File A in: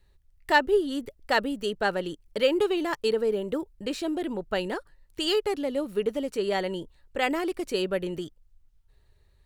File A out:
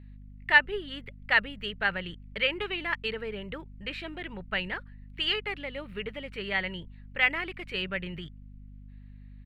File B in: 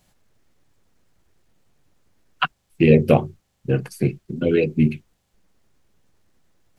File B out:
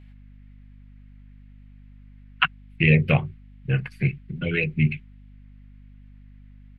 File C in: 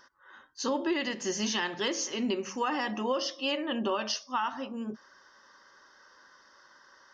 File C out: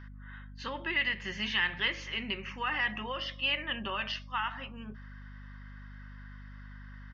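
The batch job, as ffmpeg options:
ffmpeg -i in.wav -af "firequalizer=gain_entry='entry(170,0);entry(250,-14);entry(2100,9);entry(6000,-21)':delay=0.05:min_phase=1,aeval=exprs='val(0)+0.00501*(sin(2*PI*50*n/s)+sin(2*PI*2*50*n/s)/2+sin(2*PI*3*50*n/s)/3+sin(2*PI*4*50*n/s)/4+sin(2*PI*5*50*n/s)/5)':channel_layout=same" out.wav

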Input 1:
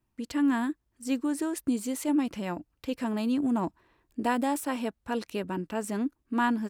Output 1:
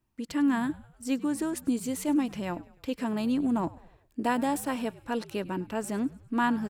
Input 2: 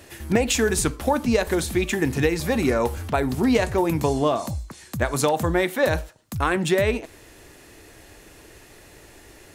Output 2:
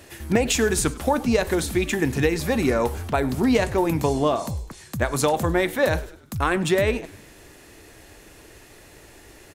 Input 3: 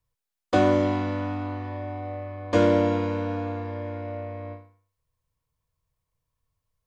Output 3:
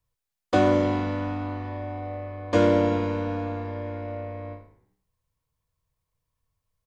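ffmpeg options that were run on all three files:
ffmpeg -i in.wav -filter_complex "[0:a]asplit=5[link_01][link_02][link_03][link_04][link_05];[link_02]adelay=101,afreqshift=-72,volume=-20dB[link_06];[link_03]adelay=202,afreqshift=-144,volume=-26dB[link_07];[link_04]adelay=303,afreqshift=-216,volume=-32dB[link_08];[link_05]adelay=404,afreqshift=-288,volume=-38.1dB[link_09];[link_01][link_06][link_07][link_08][link_09]amix=inputs=5:normalize=0" out.wav

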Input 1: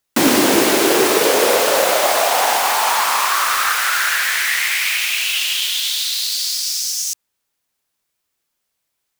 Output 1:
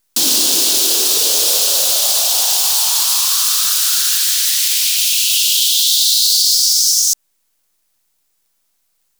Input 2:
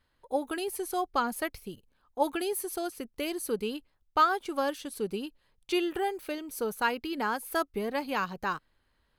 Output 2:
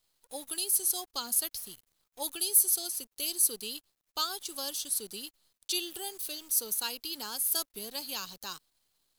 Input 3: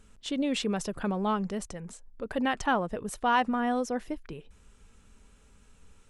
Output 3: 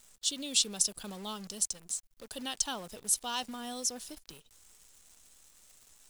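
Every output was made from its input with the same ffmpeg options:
ffmpeg -i in.wav -filter_complex "[0:a]acrossover=split=140|900|5500[link_01][link_02][link_03][link_04];[link_04]alimiter=limit=-21dB:level=0:latency=1:release=67[link_05];[link_01][link_02][link_03][link_05]amix=inputs=4:normalize=0,aexciter=amount=15.8:drive=5.3:freq=3200,acrusher=bits=7:dc=4:mix=0:aa=0.000001,volume=-13.5dB" out.wav

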